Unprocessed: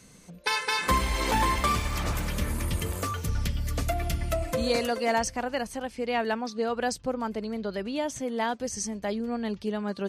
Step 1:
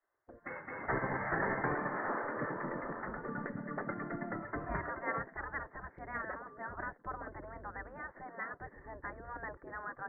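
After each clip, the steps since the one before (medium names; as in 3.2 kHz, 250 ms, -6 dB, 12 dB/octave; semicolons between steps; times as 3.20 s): steep low-pass 1.9 kHz 96 dB/octave; gate with hold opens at -40 dBFS; spectral gate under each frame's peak -15 dB weak; trim +2 dB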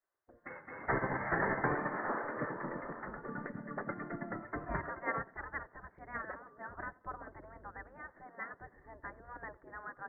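wow and flutter 21 cents; tape echo 91 ms, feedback 72%, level -17 dB, low-pass 1.1 kHz; upward expansion 1.5:1, over -49 dBFS; trim +2.5 dB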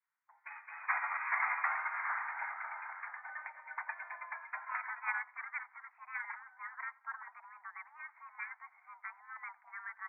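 mistuned SSB +340 Hz 550–2100 Hz; trim +1 dB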